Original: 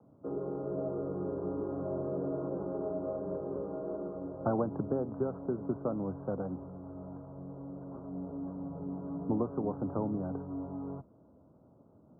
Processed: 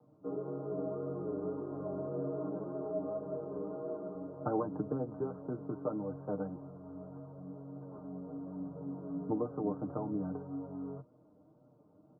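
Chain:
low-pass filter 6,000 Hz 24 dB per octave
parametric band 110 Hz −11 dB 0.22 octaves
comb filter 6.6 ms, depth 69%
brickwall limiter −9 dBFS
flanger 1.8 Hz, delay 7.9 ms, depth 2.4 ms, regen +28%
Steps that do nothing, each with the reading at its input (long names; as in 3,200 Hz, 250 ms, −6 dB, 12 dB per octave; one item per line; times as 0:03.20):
low-pass filter 6,000 Hz: nothing at its input above 1,400 Hz
brickwall limiter −9 dBFS: peak of its input −16.0 dBFS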